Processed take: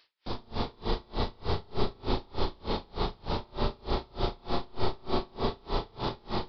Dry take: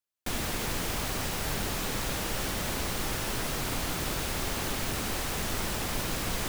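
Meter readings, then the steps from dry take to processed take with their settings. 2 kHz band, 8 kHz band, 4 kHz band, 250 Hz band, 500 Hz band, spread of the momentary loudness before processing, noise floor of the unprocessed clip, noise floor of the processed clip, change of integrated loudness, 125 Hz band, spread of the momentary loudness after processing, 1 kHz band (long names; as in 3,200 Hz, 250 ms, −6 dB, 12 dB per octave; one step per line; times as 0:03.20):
−11.0 dB, below −30 dB, −4.5 dB, 0.0 dB, +2.5 dB, 0 LU, −33 dBFS, −59 dBFS, −3.5 dB, −1.0 dB, 4 LU, +1.0 dB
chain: flat-topped bell 2,100 Hz −12 dB 1.2 octaves
in parallel at −0.5 dB: brickwall limiter −31 dBFS, peak gain reduction 11 dB
on the sum: background noise blue −47 dBFS
on a send: flutter between parallel walls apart 6.1 metres, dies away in 0.57 s
on the sum: spring reverb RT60 3.2 s, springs 33/44 ms, chirp 35 ms, DRR −5 dB
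downsampling to 11,025 Hz
tremolo with a sine in dB 3.3 Hz, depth 32 dB
level −3.5 dB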